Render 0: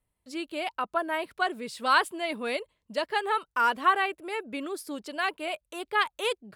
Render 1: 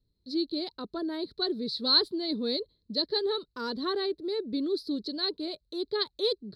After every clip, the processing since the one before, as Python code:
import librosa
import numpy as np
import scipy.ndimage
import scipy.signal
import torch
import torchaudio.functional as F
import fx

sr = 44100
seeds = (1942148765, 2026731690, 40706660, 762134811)

y = fx.curve_eq(x, sr, hz=(410.0, 720.0, 1900.0, 2800.0, 4100.0, 6800.0), db=(0, -20, -21, -28, 10, -24))
y = y * librosa.db_to_amplitude(6.0)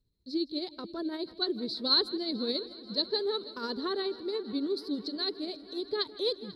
y = fx.wow_flutter(x, sr, seeds[0], rate_hz=2.1, depth_cents=16.0)
y = y * (1.0 - 0.43 / 2.0 + 0.43 / 2.0 * np.cos(2.0 * np.pi * 14.0 * (np.arange(len(y)) / sr)))
y = fx.echo_heads(y, sr, ms=163, heads='first and third', feedback_pct=68, wet_db=-19)